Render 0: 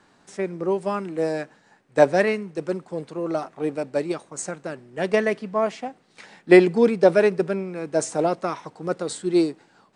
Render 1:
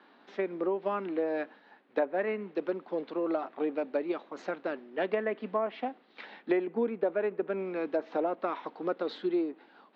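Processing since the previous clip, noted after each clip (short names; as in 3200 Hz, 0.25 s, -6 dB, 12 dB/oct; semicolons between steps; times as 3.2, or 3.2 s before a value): treble ducked by the level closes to 2200 Hz, closed at -18 dBFS; elliptic band-pass 240–3700 Hz, stop band 40 dB; compressor 5:1, threshold -27 dBFS, peak gain reduction 16.5 dB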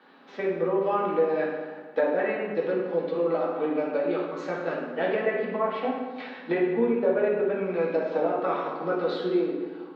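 reverb RT60 1.5 s, pre-delay 3 ms, DRR -5 dB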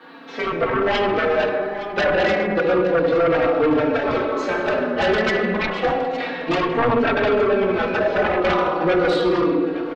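sine folder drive 13 dB, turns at -11 dBFS; feedback echo 0.864 s, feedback 50%, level -15 dB; endless flanger 3.8 ms -0.31 Hz; gain -1.5 dB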